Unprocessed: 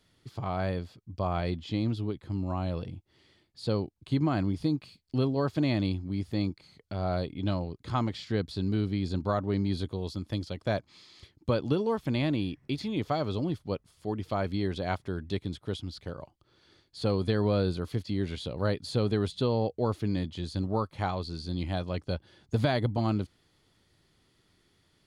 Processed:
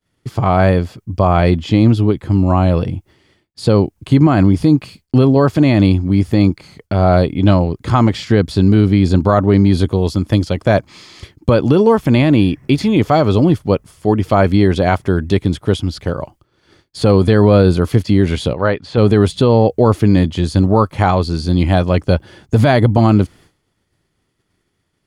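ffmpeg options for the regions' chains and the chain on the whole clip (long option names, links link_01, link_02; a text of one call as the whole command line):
ffmpeg -i in.wav -filter_complex "[0:a]asettb=1/sr,asplit=3[link_01][link_02][link_03];[link_01]atrim=end=18.534[link_04];[link_02]atrim=start=18.53:end=18.98,asetpts=PTS-STARTPTS,afade=type=in:duration=0.004:curve=qsin,afade=type=out:start_time=0.446:duration=0.004:curve=qsin,lowpass=2700,lowshelf=frequency=470:gain=-10.5[link_05];[link_03]atrim=start=18.976[link_06];[link_04][link_05]acrossfade=duration=0.004:curve1=hsin:curve2=qsin[link_07];[link_07][link_06]acrossfade=duration=0.004:curve1=qsin:curve2=hsin,agate=range=-33dB:threshold=-55dB:ratio=3:detection=peak,equalizer=frequency=4000:width_type=o:width=0.68:gain=-7.5,alimiter=level_in=20dB:limit=-1dB:release=50:level=0:latency=1,volume=-1dB" out.wav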